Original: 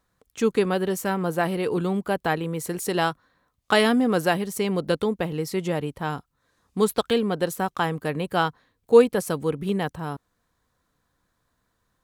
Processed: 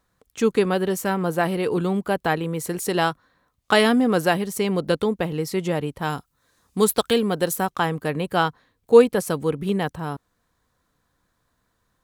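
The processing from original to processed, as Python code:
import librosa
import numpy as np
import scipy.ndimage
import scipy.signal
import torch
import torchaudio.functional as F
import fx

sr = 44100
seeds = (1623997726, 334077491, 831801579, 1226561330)

y = fx.high_shelf(x, sr, hz=fx.line((6.01, 4000.0), (7.65, 7000.0)), db=8.5, at=(6.01, 7.65), fade=0.02)
y = F.gain(torch.from_numpy(y), 2.0).numpy()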